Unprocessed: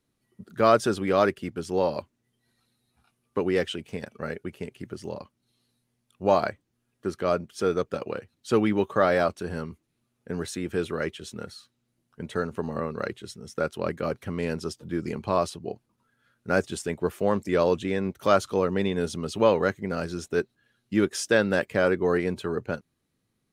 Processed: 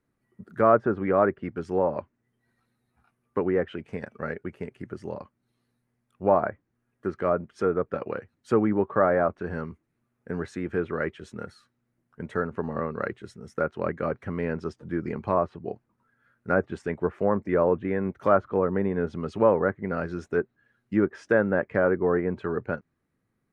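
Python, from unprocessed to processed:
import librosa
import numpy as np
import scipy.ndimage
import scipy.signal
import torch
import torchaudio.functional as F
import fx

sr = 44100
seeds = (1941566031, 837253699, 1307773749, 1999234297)

y = fx.env_lowpass_down(x, sr, base_hz=1400.0, full_db=-20.5)
y = fx.high_shelf_res(y, sr, hz=2500.0, db=-9.5, q=1.5)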